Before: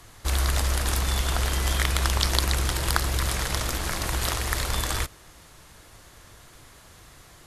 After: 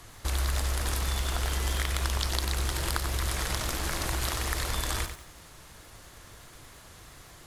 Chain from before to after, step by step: compression 3:1, threshold -28 dBFS, peak gain reduction 9 dB; bit-crushed delay 93 ms, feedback 35%, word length 8-bit, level -8 dB

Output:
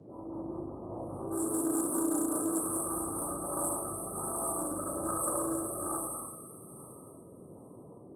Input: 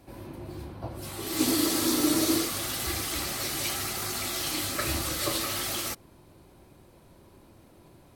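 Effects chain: local Wiener filter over 25 samples; two-band feedback delay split 1.2 kHz, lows 100 ms, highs 297 ms, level -3 dB; compression 6:1, threshold -29 dBFS, peak gain reduction 10.5 dB; brick-wall FIR band-stop 1.3–8.3 kHz; rotary cabinet horn 5 Hz, later 1.2 Hz, at 2.79 s; frequency weighting ITU-R 468; reverberation RT60 0.80 s, pre-delay 3 ms, DRR -8 dB; band noise 99–490 Hz -52 dBFS; treble shelf 8 kHz -4 dB; loudspeaker Doppler distortion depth 0.13 ms

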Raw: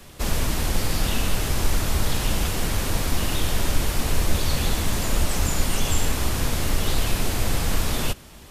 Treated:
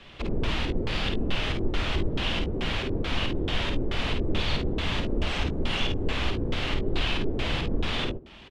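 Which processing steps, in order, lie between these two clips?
bass shelf 170 Hz -4 dB; LFO low-pass square 2.3 Hz 380–3100 Hz; treble shelf 8.9 kHz -4.5 dB; early reflections 51 ms -5 dB, 69 ms -14.5 dB; trim -3.5 dB

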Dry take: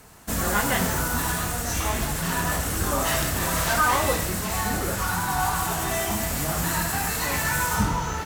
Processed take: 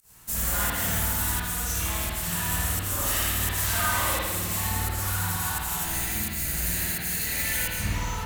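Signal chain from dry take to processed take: 5.85–7.94 s: comb filter that takes the minimum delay 0.46 ms; pre-emphasis filter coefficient 0.9; volume shaper 86 bpm, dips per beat 1, -21 dB, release 136 ms; bass shelf 150 Hz +11.5 dB; spring tank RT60 1.4 s, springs 52 ms, chirp 35 ms, DRR -8 dB

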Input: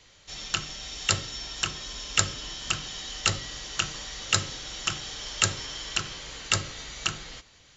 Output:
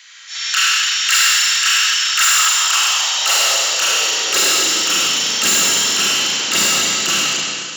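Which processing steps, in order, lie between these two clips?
tilt EQ +2 dB/octave; Schroeder reverb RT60 2.1 s, combs from 33 ms, DRR -5 dB; transient shaper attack -7 dB, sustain +7 dB; overload inside the chain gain 20 dB; high-pass sweep 1.6 kHz -> 230 Hz, 1.99–5.21 s; trim +8 dB

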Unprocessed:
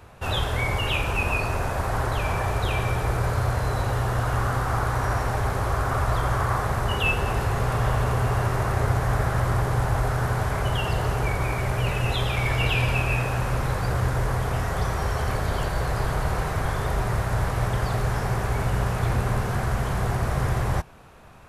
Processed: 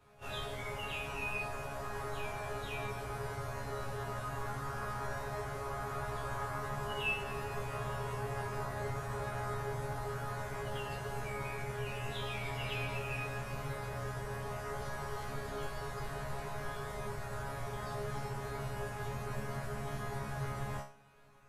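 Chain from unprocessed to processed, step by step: chord resonator C#3 fifth, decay 0.37 s; pre-echo 32 ms -14 dB; trim +1 dB

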